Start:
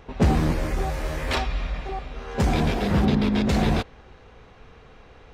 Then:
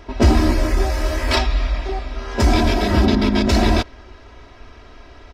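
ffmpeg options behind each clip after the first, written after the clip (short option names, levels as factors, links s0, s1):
-af "equalizer=f=5100:w=3.9:g=7.5,aecho=1:1:3.1:0.88,volume=1.58"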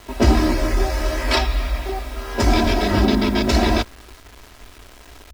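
-filter_complex "[0:a]acrossover=split=210[s0][s1];[s0]flanger=delay=16.5:depth=4.9:speed=0.56[s2];[s1]acrusher=bits=6:mix=0:aa=0.000001[s3];[s2][s3]amix=inputs=2:normalize=0"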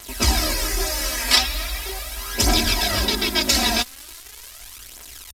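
-af "aphaser=in_gain=1:out_gain=1:delay=4.4:decay=0.5:speed=0.4:type=triangular,crystalizer=i=10:c=0,aresample=32000,aresample=44100,volume=0.316"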